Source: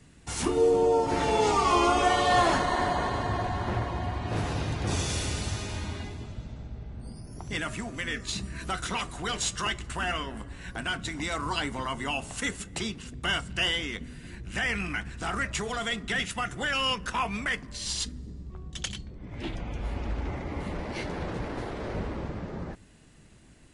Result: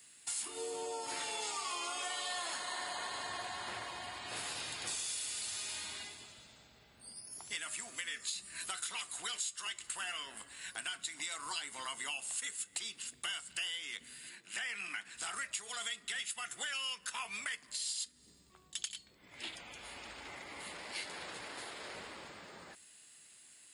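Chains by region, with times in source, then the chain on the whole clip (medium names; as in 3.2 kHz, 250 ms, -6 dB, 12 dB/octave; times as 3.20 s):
14.29–15.15 s: high-pass 160 Hz 24 dB/octave + treble shelf 5.4 kHz -6.5 dB
whole clip: differentiator; band-stop 5.9 kHz, Q 5.2; compression 6:1, threshold -45 dBFS; trim +8 dB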